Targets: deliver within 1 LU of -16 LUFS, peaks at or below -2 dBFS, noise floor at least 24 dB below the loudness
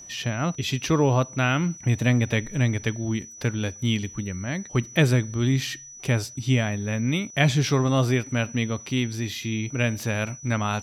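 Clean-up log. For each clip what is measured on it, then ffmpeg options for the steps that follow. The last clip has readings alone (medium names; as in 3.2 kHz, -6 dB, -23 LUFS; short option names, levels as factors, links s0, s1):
steady tone 5.9 kHz; tone level -41 dBFS; loudness -25.0 LUFS; peak level -6.0 dBFS; loudness target -16.0 LUFS
-> -af "bandreject=f=5900:w=30"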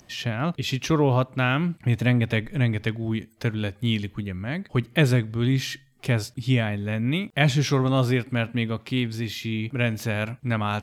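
steady tone not found; loudness -25.0 LUFS; peak level -6.0 dBFS; loudness target -16.0 LUFS
-> -af "volume=2.82,alimiter=limit=0.794:level=0:latency=1"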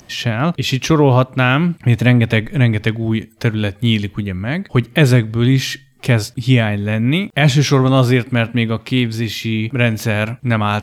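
loudness -16.0 LUFS; peak level -2.0 dBFS; noise floor -47 dBFS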